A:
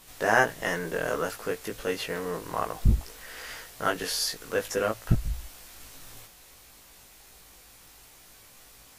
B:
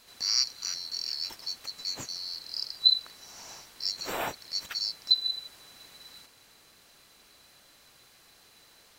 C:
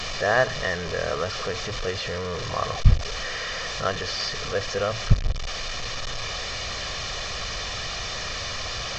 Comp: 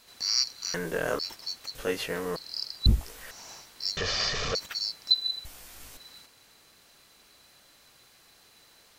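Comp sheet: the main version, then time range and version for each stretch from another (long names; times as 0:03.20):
B
0:00.74–0:01.19: punch in from A
0:01.75–0:02.36: punch in from A
0:02.86–0:03.31: punch in from A
0:03.97–0:04.55: punch in from C
0:05.45–0:05.97: punch in from A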